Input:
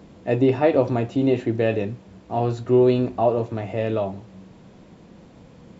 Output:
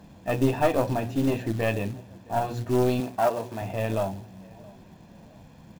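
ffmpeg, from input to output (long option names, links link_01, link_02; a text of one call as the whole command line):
ffmpeg -i in.wav -filter_complex "[0:a]bandreject=frequency=60:width_type=h:width=6,bandreject=frequency=120:width_type=h:width=6,bandreject=frequency=180:width_type=h:width=6,bandreject=frequency=240:width_type=h:width=6,bandreject=frequency=300:width_type=h:width=6,bandreject=frequency=360:width_type=h:width=6,bandreject=frequency=420:width_type=h:width=6,bandreject=frequency=480:width_type=h:width=6,bandreject=frequency=540:width_type=h:width=6,aecho=1:1:1.2:0.47,asplit=2[link_01][link_02];[link_02]adelay=667,lowpass=frequency=2000:poles=1,volume=-23.5dB,asplit=2[link_03][link_04];[link_04]adelay=667,lowpass=frequency=2000:poles=1,volume=0.4,asplit=2[link_05][link_06];[link_06]adelay=667,lowpass=frequency=2000:poles=1,volume=0.4[link_07];[link_01][link_03][link_05][link_07]amix=inputs=4:normalize=0,acrusher=bits=5:mode=log:mix=0:aa=0.000001,aeval=exprs='(tanh(3.98*val(0)+0.6)-tanh(0.6))/3.98':channel_layout=same,asettb=1/sr,asplit=3[link_08][link_09][link_10];[link_08]atrim=end=3.004[link_11];[link_09]atrim=start=3:end=3.62,asetpts=PTS-STARTPTS,afade=type=in:duration=0.004:curve=qsin,afade=type=out:start_time=0.616:duration=0.004:curve=qsin,highpass=frequency=280:poles=1[link_12];[link_10]atrim=start=3.616[link_13];[link_11][link_12]acrossfade=duration=0.004:curve1=hsin:curve2=qsin[link_14];[link_14][link_13]acrossfade=duration=0.004:curve1=qsin:curve2=hsin" out.wav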